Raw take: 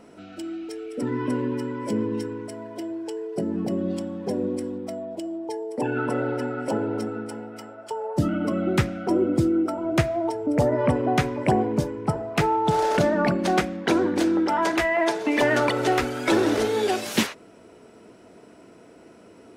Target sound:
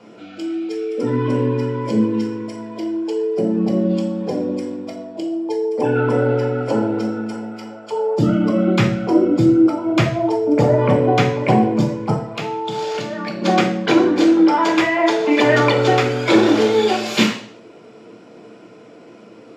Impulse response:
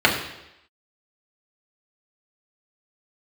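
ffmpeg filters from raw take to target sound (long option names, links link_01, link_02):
-filter_complex "[0:a]asettb=1/sr,asplit=3[link_01][link_02][link_03];[link_01]atrim=end=12.134[link_04];[link_02]atrim=start=12.13:end=13.42,asetpts=PTS-STARTPTS,afade=type=in:duration=0.004:curve=qsin,afade=type=out:start_time=1.286:duration=0.004:curve=qsin,acrossover=split=1200|2600|5300[link_05][link_06][link_07][link_08];[link_05]acompressor=threshold=-34dB:ratio=4[link_09];[link_06]acompressor=threshold=-44dB:ratio=4[link_10];[link_07]acompressor=threshold=-39dB:ratio=4[link_11];[link_08]acompressor=threshold=-47dB:ratio=4[link_12];[link_09][link_10][link_11][link_12]amix=inputs=4:normalize=0[link_13];[link_03]atrim=start=13.416[link_14];[link_04][link_13]acrossfade=duration=0.004:curve1=hsin:curve2=qsin[link_15];[link_15][link_14]acrossfade=duration=0.004:curve1=qsin:curve2=hsin[link_16];[1:a]atrim=start_sample=2205,asetrate=70560,aresample=44100[link_17];[link_16][link_17]afir=irnorm=-1:irlink=0,volume=-10.5dB"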